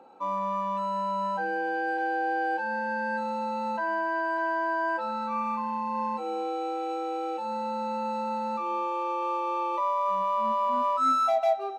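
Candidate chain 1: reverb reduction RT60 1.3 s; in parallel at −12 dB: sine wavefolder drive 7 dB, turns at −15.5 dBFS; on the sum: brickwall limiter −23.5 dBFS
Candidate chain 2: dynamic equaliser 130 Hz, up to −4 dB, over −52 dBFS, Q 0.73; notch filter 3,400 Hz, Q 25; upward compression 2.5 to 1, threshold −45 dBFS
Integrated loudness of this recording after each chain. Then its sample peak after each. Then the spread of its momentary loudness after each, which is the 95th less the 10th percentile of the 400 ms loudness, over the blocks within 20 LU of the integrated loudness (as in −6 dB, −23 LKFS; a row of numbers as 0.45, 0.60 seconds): −30.5, −29.0 LKFS; −23.5, −15.5 dBFS; 2, 6 LU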